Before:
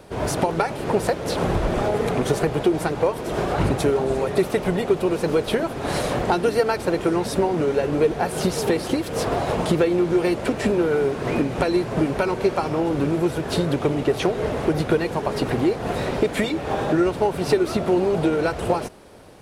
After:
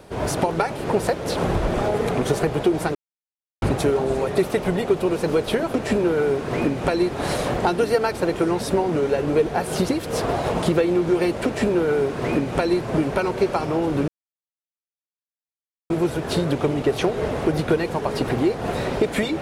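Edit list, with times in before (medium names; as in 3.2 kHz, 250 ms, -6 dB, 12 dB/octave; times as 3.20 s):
2.95–3.62 s: mute
8.54–8.92 s: delete
10.48–11.83 s: copy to 5.74 s
13.11 s: insert silence 1.82 s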